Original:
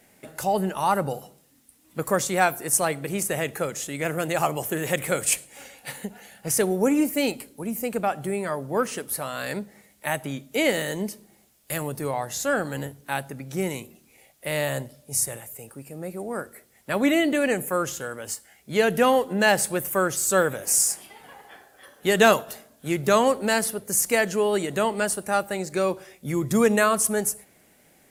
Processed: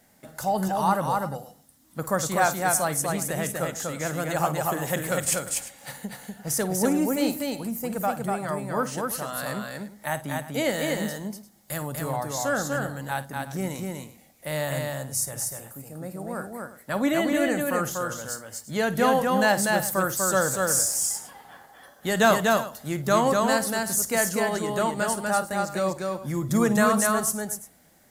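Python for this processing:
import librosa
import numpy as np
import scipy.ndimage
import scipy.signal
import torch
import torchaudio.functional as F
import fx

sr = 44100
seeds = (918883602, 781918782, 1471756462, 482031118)

y = fx.graphic_eq_15(x, sr, hz=(400, 2500, 10000), db=(-8, -9, -4))
y = fx.echo_multitap(y, sr, ms=(52, 244, 348), db=(-14.5, -3.0, -16.0))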